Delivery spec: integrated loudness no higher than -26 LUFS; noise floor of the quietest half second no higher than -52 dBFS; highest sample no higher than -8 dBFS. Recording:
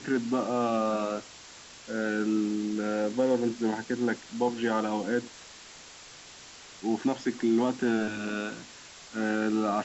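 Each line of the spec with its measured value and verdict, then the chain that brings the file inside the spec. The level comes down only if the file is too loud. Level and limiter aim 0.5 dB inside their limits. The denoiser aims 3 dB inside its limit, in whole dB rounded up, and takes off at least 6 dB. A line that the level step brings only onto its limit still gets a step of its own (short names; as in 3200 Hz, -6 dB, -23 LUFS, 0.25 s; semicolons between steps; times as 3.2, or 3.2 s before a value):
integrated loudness -29.5 LUFS: OK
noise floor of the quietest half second -49 dBFS: fail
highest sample -15.5 dBFS: OK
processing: denoiser 6 dB, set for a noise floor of -49 dBFS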